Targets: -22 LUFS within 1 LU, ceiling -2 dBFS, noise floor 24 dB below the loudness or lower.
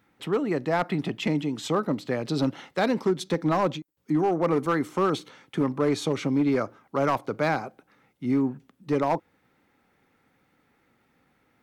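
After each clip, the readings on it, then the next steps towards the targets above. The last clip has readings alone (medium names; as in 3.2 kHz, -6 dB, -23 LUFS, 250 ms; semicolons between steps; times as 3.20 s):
clipped samples 1.1%; clipping level -16.5 dBFS; dropouts 1; longest dropout 1.3 ms; loudness -26.5 LUFS; peak level -16.5 dBFS; loudness target -22.0 LUFS
-> clip repair -16.5 dBFS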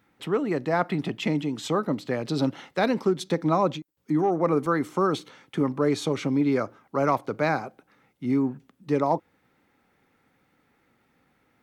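clipped samples 0.0%; dropouts 1; longest dropout 1.3 ms
-> interpolate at 4.66 s, 1.3 ms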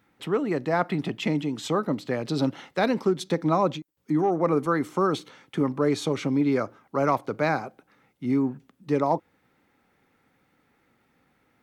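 dropouts 0; loudness -26.0 LUFS; peak level -9.0 dBFS; loudness target -22.0 LUFS
-> trim +4 dB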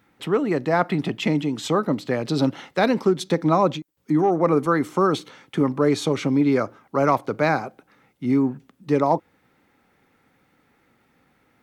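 loudness -22.0 LUFS; peak level -5.0 dBFS; noise floor -64 dBFS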